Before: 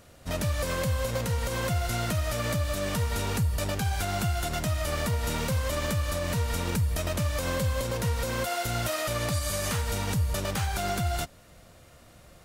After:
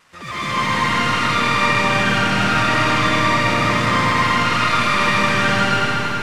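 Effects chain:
linear delta modulator 32 kbit/s, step −43 dBFS
bass and treble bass −10 dB, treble −12 dB
brickwall limiter −28 dBFS, peak gain reduction 6 dB
automatic gain control gain up to 11.5 dB
echo with a time of its own for lows and highs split 650 Hz, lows 232 ms, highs 311 ms, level −4 dB
wrong playback speed 7.5 ips tape played at 15 ips
parametric band 1,900 Hz +7 dB 0.69 octaves
convolution reverb RT60 3.7 s, pre-delay 75 ms, DRR −8.5 dB
feedback echo at a low word length 92 ms, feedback 55%, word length 7 bits, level −13 dB
level −5.5 dB

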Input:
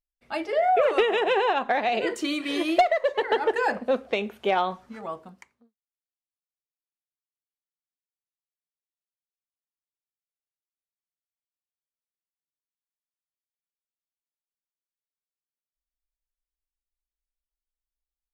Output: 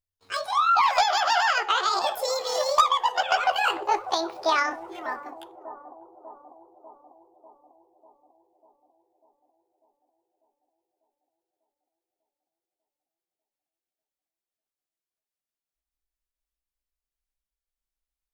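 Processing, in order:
pitch glide at a constant tempo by +11 semitones ending unshifted
bucket-brigade delay 595 ms, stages 4,096, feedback 64%, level −13 dB
level +1.5 dB

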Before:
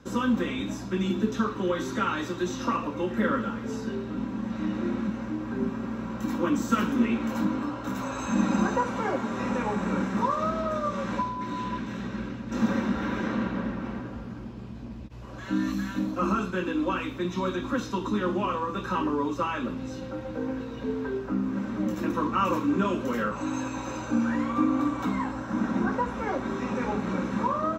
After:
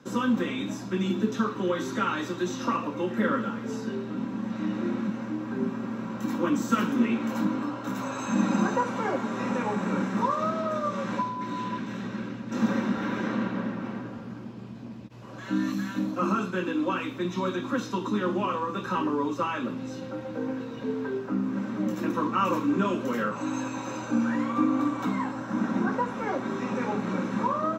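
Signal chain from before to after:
high-pass filter 110 Hz 24 dB per octave

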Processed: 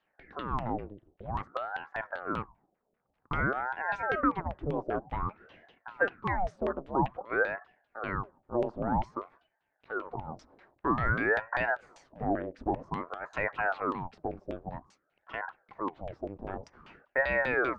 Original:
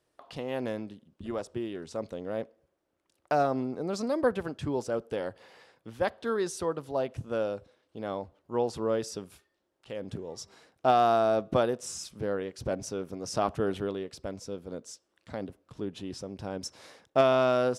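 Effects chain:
brickwall limiter −20 dBFS, peak gain reduction 8.5 dB
auto-filter low-pass saw down 5.1 Hz 390–2,500 Hz
ring modulator whose carrier an LFO sweeps 670 Hz, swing 85%, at 0.52 Hz

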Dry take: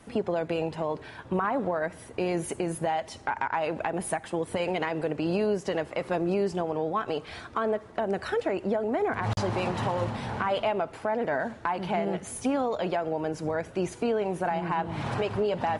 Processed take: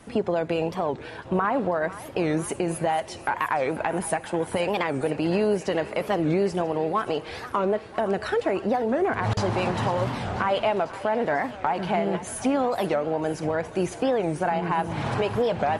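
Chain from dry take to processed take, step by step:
feedback echo with a high-pass in the loop 495 ms, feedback 76%, high-pass 500 Hz, level −15 dB
wow of a warped record 45 rpm, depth 250 cents
level +3.5 dB

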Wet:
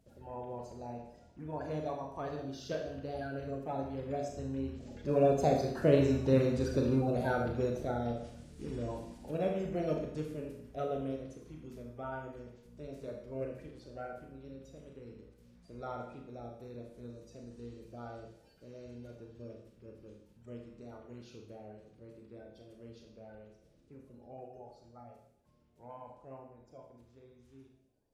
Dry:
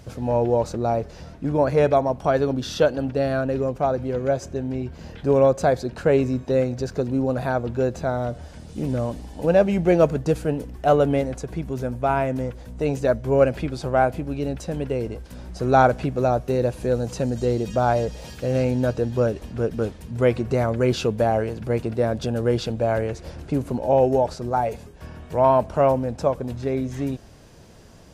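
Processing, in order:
spectral magnitudes quantised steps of 30 dB
source passing by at 0:06.43, 13 m/s, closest 12 metres
four-comb reverb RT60 0.72 s, combs from 26 ms, DRR 1 dB
level −6.5 dB

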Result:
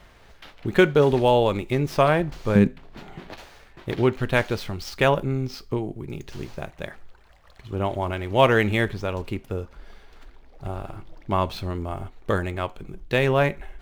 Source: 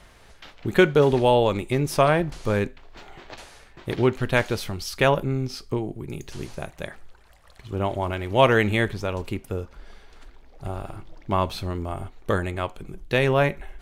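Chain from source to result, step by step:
running median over 5 samples
0:02.55–0:03.33: parametric band 180 Hz +14.5 dB 1.3 octaves

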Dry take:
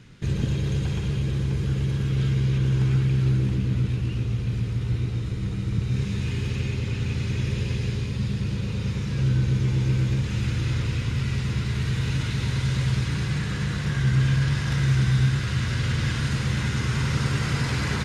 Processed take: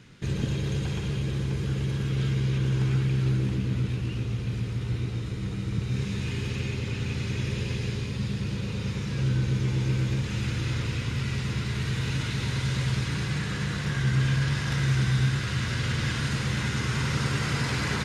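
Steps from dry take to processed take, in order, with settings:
low-shelf EQ 120 Hz −7.5 dB

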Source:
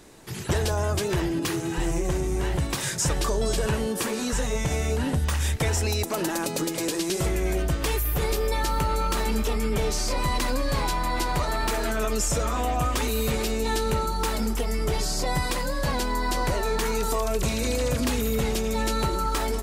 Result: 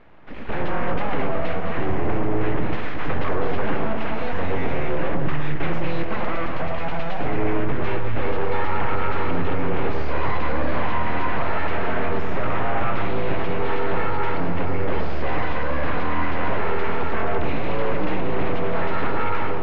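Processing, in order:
soft clipping −22 dBFS, distortion −16 dB
automatic gain control gain up to 5.5 dB
full-wave rectification
low-pass filter 2,500 Hz 24 dB per octave
delay that swaps between a low-pass and a high-pass 110 ms, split 1,300 Hz, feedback 59%, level −4.5 dB
level +2.5 dB

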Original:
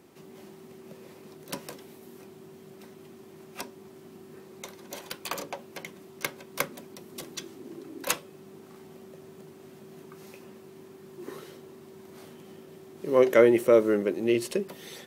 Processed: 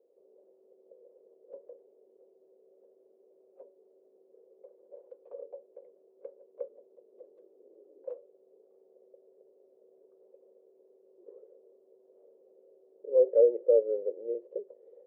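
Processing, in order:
flat-topped band-pass 500 Hz, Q 4.2

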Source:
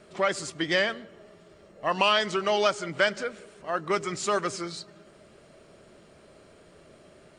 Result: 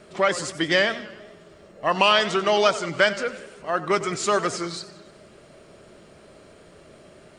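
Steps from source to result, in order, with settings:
feedback echo with a swinging delay time 95 ms, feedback 54%, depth 171 cents, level −15.5 dB
level +4.5 dB

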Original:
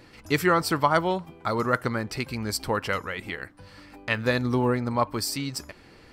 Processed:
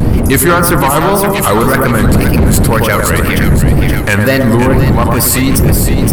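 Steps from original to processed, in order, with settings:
wind on the microphone 170 Hz −25 dBFS
high shelf with overshoot 7,900 Hz +13 dB, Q 1.5
soft clipping −19 dBFS, distortion −10 dB
tape wow and flutter 150 cents
on a send: echo with a time of its own for lows and highs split 1,600 Hz, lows 108 ms, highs 521 ms, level −5 dB
on the sum: boost into a limiter +23 dB
level −1 dB

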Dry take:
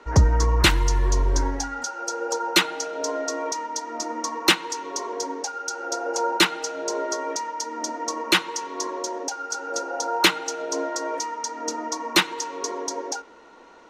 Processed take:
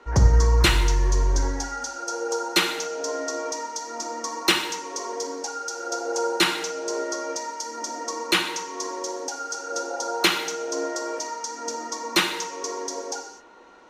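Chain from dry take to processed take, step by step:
reverb whose tail is shaped and stops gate 280 ms falling, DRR 3 dB
level −3 dB

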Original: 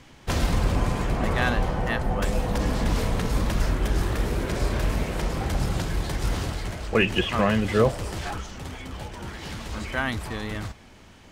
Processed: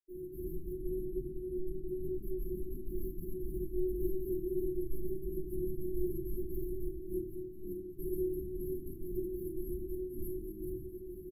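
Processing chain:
high-pass filter 62 Hz 12 dB per octave
comb filter 5.9 ms, depth 31%
compressor whose output falls as the input rises −31 dBFS, ratio −0.5
brickwall limiter −30 dBFS, peak gain reduction 14 dB
gate pattern ".xx.xxx.x.xxx" 190 BPM −60 dB
linear-phase brick-wall band-stop 410–10,000 Hz
stiff-string resonator 360 Hz, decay 0.37 s, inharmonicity 0.03
rectangular room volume 62 cubic metres, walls mixed, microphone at 2.9 metres
feedback echo at a low word length 215 ms, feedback 55%, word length 14 bits, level −14 dB
level +9 dB

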